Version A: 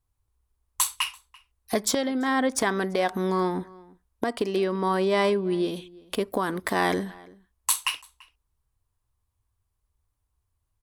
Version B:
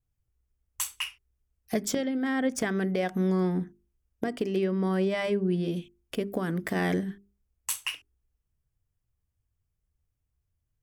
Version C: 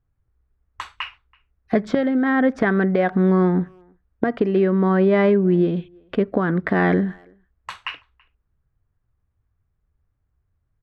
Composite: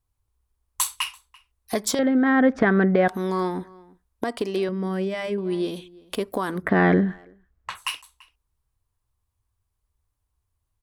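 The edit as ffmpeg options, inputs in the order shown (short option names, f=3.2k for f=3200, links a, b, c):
-filter_complex "[2:a]asplit=2[a][b];[0:a]asplit=4[c][d][e][f];[c]atrim=end=1.992[g];[a]atrim=start=1.988:end=3.082[h];[d]atrim=start=3.078:end=4.692[i];[1:a]atrim=start=4.688:end=5.382[j];[e]atrim=start=5.378:end=6.7[k];[b]atrim=start=6.54:end=7.9[l];[f]atrim=start=7.74[m];[g][h]acrossfade=d=0.004:c1=hsin:c2=hsin[n];[n][i]acrossfade=d=0.004:c1=hsin:c2=hsin[o];[o][j]acrossfade=d=0.004:c1=hsin:c2=hsin[p];[p][k]acrossfade=d=0.004:c1=hsin:c2=hsin[q];[q][l]acrossfade=d=0.16:c1=tri:c2=tri[r];[r][m]acrossfade=d=0.16:c1=tri:c2=tri"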